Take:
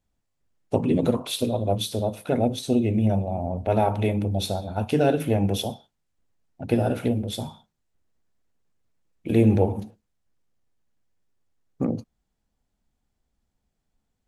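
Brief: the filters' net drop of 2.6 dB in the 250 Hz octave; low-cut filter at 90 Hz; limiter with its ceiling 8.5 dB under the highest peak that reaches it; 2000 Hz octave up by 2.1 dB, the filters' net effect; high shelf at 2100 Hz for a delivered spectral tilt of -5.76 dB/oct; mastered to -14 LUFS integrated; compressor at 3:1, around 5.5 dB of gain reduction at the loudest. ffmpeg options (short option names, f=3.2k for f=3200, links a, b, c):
-af "highpass=90,equalizer=f=250:t=o:g=-3,equalizer=f=2k:t=o:g=6,highshelf=f=2.1k:g=-4.5,acompressor=threshold=-23dB:ratio=3,volume=17dB,alimiter=limit=-2dB:level=0:latency=1"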